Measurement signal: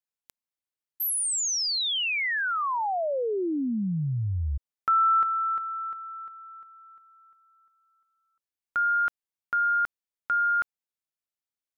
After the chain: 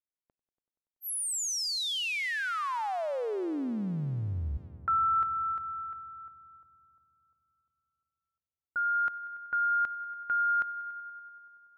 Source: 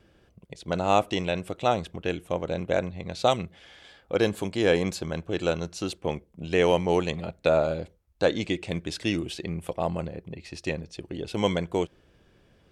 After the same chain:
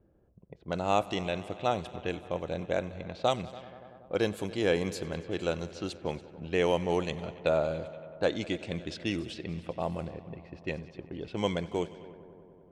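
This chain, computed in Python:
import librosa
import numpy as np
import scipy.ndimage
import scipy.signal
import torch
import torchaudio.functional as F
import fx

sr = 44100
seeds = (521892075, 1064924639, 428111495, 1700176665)

y = fx.echo_heads(x, sr, ms=95, heads='all three', feedback_pct=70, wet_db=-23)
y = fx.env_lowpass(y, sr, base_hz=710.0, full_db=-24.5)
y = y * 10.0 ** (-5.0 / 20.0)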